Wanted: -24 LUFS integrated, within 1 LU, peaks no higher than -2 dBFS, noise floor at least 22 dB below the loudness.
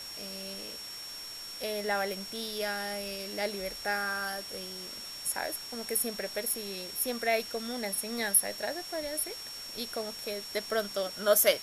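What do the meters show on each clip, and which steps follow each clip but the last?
steady tone 5.5 kHz; tone level -41 dBFS; noise floor -43 dBFS; noise floor target -55 dBFS; loudness -32.5 LUFS; peak level -12.0 dBFS; loudness target -24.0 LUFS
-> band-stop 5.5 kHz, Q 30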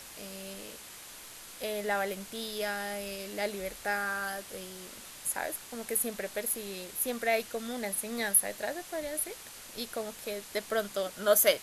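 steady tone not found; noise floor -48 dBFS; noise floor target -55 dBFS
-> noise reduction 7 dB, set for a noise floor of -48 dBFS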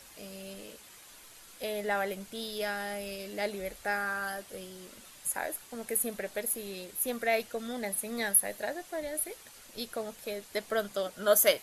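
noise floor -53 dBFS; noise floor target -55 dBFS
-> noise reduction 6 dB, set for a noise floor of -53 dBFS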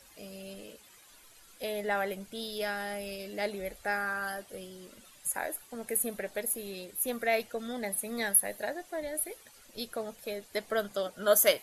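noise floor -57 dBFS; loudness -32.5 LUFS; peak level -12.0 dBFS; loudness target -24.0 LUFS
-> trim +8.5 dB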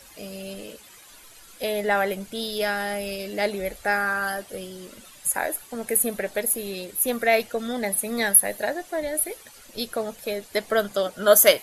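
loudness -24.0 LUFS; peak level -3.5 dBFS; noise floor -49 dBFS

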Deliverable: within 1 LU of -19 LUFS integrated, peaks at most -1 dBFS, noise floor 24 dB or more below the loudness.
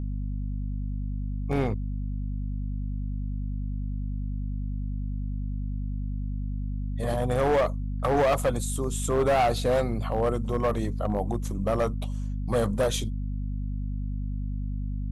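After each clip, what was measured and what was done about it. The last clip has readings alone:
clipped samples 1.4%; clipping level -18.5 dBFS; hum 50 Hz; highest harmonic 250 Hz; hum level -28 dBFS; loudness -29.0 LUFS; peak level -18.5 dBFS; loudness target -19.0 LUFS
-> clip repair -18.5 dBFS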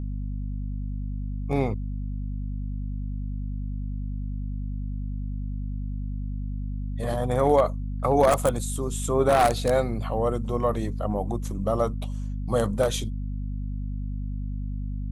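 clipped samples 0.0%; hum 50 Hz; highest harmonic 250 Hz; hum level -28 dBFS
-> hum notches 50/100/150/200/250 Hz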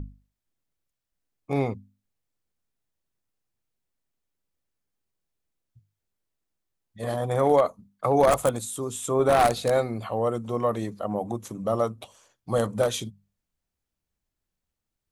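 hum not found; loudness -25.5 LUFS; peak level -8.5 dBFS; loudness target -19.0 LUFS
-> trim +6.5 dB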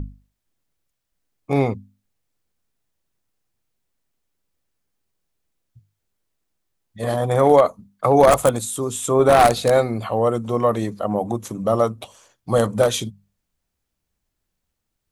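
loudness -19.0 LUFS; peak level -2.0 dBFS; noise floor -78 dBFS

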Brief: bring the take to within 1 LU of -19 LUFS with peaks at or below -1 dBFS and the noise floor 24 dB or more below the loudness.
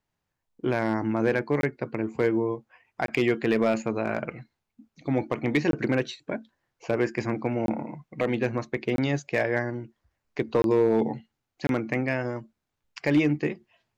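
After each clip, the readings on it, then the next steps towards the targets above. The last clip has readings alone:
clipped samples 0.3%; clipping level -14.0 dBFS; dropouts 7; longest dropout 22 ms; loudness -27.0 LUFS; peak level -14.0 dBFS; loudness target -19.0 LUFS
-> clip repair -14 dBFS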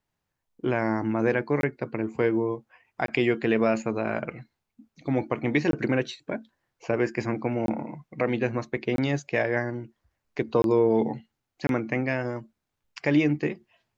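clipped samples 0.0%; dropouts 7; longest dropout 22 ms
-> interpolate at 1.61/3.06/5.71/7.66/8.96/10.62/11.67 s, 22 ms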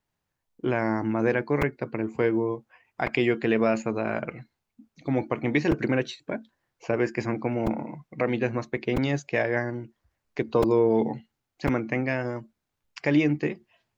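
dropouts 0; loudness -27.0 LUFS; peak level -9.5 dBFS; loudness target -19.0 LUFS
-> trim +8 dB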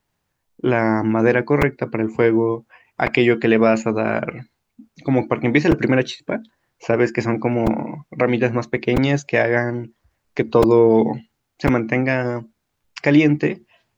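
loudness -19.0 LUFS; peak level -1.5 dBFS; noise floor -75 dBFS

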